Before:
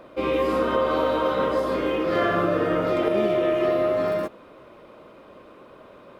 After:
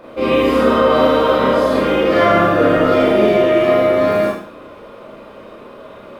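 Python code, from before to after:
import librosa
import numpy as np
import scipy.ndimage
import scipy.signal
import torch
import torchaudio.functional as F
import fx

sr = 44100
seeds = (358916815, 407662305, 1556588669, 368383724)

p1 = x + fx.echo_single(x, sr, ms=78, db=-10.5, dry=0)
p2 = fx.rev_schroeder(p1, sr, rt60_s=0.48, comb_ms=27, drr_db=-5.0)
y = F.gain(torch.from_numpy(p2), 4.0).numpy()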